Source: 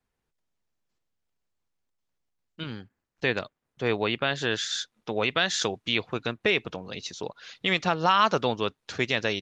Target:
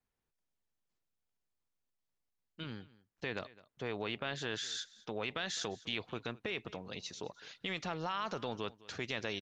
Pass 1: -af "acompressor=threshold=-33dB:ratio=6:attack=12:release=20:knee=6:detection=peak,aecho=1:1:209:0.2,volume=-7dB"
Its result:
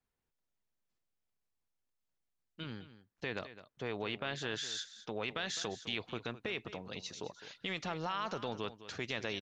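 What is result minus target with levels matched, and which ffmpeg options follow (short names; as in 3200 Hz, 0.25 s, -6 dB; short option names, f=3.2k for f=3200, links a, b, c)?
echo-to-direct +6.5 dB
-af "acompressor=threshold=-33dB:ratio=6:attack=12:release=20:knee=6:detection=peak,aecho=1:1:209:0.0944,volume=-7dB"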